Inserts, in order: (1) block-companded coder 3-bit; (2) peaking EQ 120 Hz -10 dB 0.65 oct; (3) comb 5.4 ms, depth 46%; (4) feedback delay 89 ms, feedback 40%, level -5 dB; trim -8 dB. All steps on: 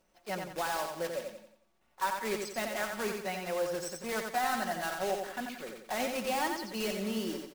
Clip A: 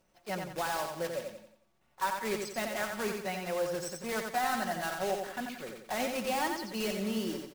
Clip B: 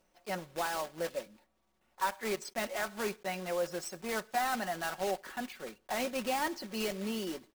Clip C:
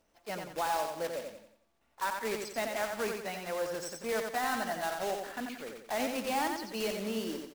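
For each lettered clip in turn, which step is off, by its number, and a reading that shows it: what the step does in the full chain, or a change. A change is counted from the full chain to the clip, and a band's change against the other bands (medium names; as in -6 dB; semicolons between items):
2, 125 Hz band +2.5 dB; 4, echo-to-direct -4.0 dB to none; 3, 125 Hz band -2.0 dB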